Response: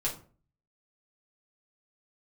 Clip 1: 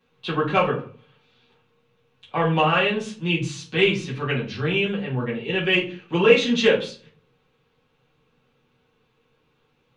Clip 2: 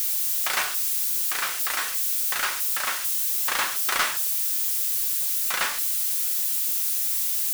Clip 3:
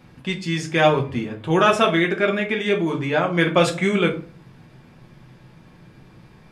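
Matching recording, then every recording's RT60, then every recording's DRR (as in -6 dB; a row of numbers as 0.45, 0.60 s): 1; 0.40, 0.45, 0.40 s; -5.0, 8.0, 1.0 dB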